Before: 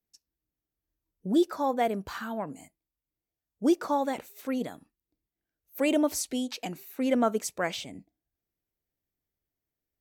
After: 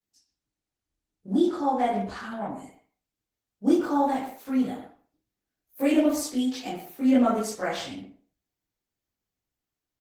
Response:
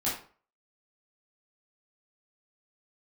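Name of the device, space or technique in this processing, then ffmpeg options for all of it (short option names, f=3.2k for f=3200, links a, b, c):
speakerphone in a meeting room: -filter_complex "[1:a]atrim=start_sample=2205[a];[0:a][a]afir=irnorm=-1:irlink=0,asplit=2[b][c];[c]adelay=120,highpass=300,lowpass=3.4k,asoftclip=type=hard:threshold=-13.5dB,volume=-10dB[d];[b][d]amix=inputs=2:normalize=0,dynaudnorm=f=680:g=7:m=5dB,volume=-7.5dB" -ar 48000 -c:a libopus -b:a 16k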